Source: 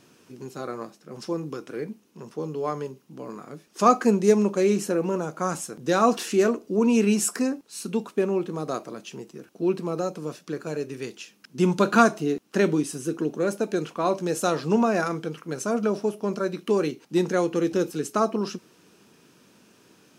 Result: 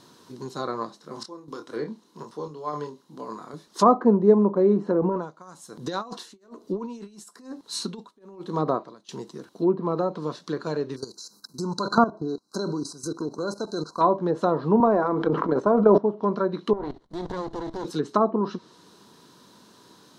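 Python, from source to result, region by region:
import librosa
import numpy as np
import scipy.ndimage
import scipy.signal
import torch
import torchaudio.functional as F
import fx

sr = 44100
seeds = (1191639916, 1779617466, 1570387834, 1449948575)

y = fx.chain(x, sr, fx.low_shelf(hz=110.0, db=-10.0),
    fx.tremolo_random(seeds[0], hz=4.0, depth_pct=85),
    fx.doubler(ms=27.0, db=-6.0), at=(0.98, 3.54))
y = fx.chain(y, sr, fx.over_compress(threshold_db=-26.0, ratio=-0.5),
    fx.tremolo_db(hz=1.1, depth_db=25), at=(5.02, 9.09))
y = fx.chain(y, sr, fx.brickwall_bandstop(low_hz=1600.0, high_hz=3900.0),
    fx.high_shelf(hz=3500.0, db=11.0),
    fx.level_steps(step_db=15), at=(10.96, 14.01))
y = fx.chain(y, sr, fx.highpass(hz=240.0, slope=12),
    fx.transient(attack_db=10, sustain_db=6),
    fx.sustainer(db_per_s=26.0), at=(14.8, 15.98))
y = fx.chain(y, sr, fx.level_steps(step_db=16),
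    fx.running_max(window=33), at=(16.73, 17.85))
y = fx.env_lowpass_down(y, sr, base_hz=860.0, full_db=-20.5)
y = fx.graphic_eq_31(y, sr, hz=(1000, 2500, 4000), db=(10, -11, 11))
y = F.gain(torch.from_numpy(y), 2.0).numpy()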